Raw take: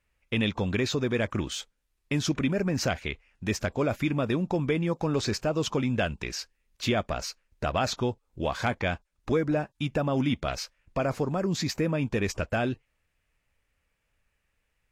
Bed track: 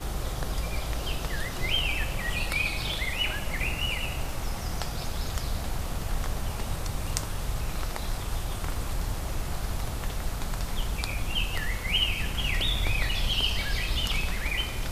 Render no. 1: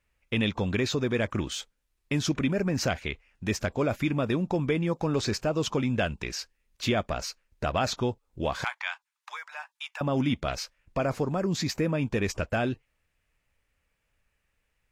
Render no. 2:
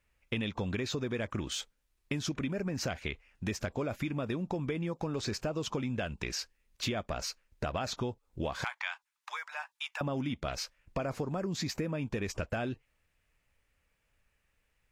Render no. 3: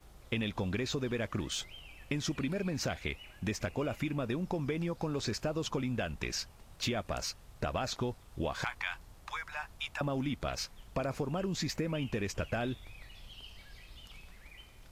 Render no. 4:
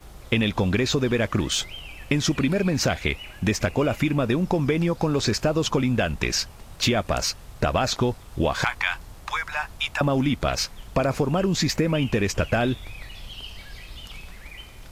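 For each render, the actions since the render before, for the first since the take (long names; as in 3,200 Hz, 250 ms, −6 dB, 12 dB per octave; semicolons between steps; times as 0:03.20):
0:08.64–0:10.01: elliptic high-pass filter 900 Hz, stop band 70 dB
downward compressor, threshold −31 dBFS, peak gain reduction 9.5 dB
mix in bed track −24 dB
level +12 dB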